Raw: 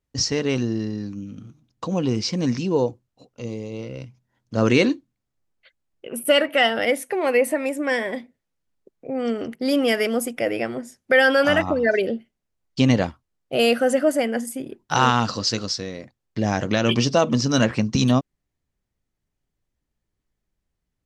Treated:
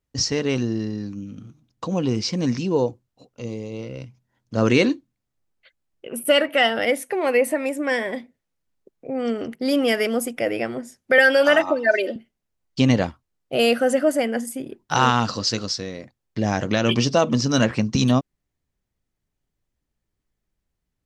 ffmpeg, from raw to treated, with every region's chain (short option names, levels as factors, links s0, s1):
-filter_complex "[0:a]asettb=1/sr,asplit=3[s0][s1][s2];[s0]atrim=end=11.184[s3];[s1]atrim=start=11.18:end=12.16,asetpts=PTS-STARTPTS,afade=t=in:d=0.004:c=qsin,afade=t=out:st=0.976:d=0.004:c=qsin,highpass=380,aecho=1:1:3.3:0.72,atrim=end_sample=43218[s4];[s2]atrim=start=12.156[s5];[s3][s4]acrossfade=d=0.004:c1=hsin:c2=qsin[s6];[s6][s5]acrossfade=d=0.004:c1=qsin:c2=hsin"